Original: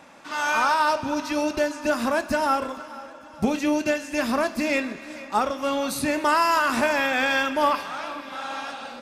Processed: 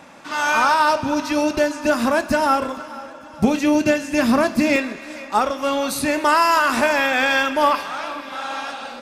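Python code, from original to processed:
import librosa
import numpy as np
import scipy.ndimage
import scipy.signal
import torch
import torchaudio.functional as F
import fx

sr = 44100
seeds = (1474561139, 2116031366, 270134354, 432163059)

y = fx.peak_eq(x, sr, hz=140.0, db=fx.steps((0.0, 3.0), (3.75, 9.5), (4.76, -3.5)), octaves=1.7)
y = y * librosa.db_to_amplitude(4.5)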